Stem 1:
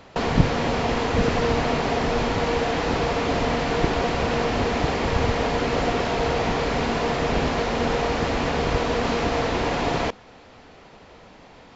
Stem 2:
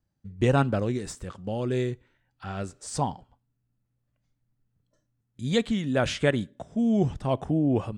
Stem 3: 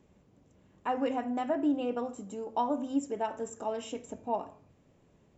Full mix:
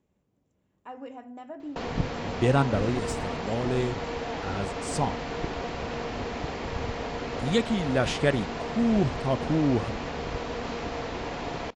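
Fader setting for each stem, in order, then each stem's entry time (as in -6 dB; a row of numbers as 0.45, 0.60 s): -10.0, -0.5, -10.5 dB; 1.60, 2.00, 0.00 s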